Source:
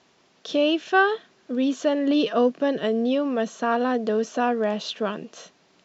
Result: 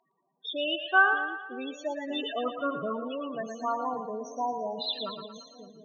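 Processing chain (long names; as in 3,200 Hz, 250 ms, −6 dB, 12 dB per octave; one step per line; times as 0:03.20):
0:02.46–0:02.97: each half-wave held at its own peak
spectral peaks only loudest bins 8
octave-band graphic EQ 125/250/500/1,000/2,000/4,000 Hz +5/−9/−6/+7/+8/+12 dB
on a send: echo with a time of its own for lows and highs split 470 Hz, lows 583 ms, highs 114 ms, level −7 dB
on the sum: level −7.5 dB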